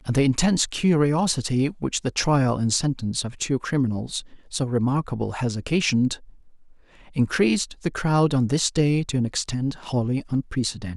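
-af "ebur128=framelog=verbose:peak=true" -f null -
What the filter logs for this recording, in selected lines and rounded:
Integrated loudness:
  I:         -23.3 LUFS
  Threshold: -33.6 LUFS
Loudness range:
  LRA:         3.0 LU
  Threshold: -43.9 LUFS
  LRA low:   -25.5 LUFS
  LRA high:  -22.4 LUFS
True peak:
  Peak:       -3.3 dBFS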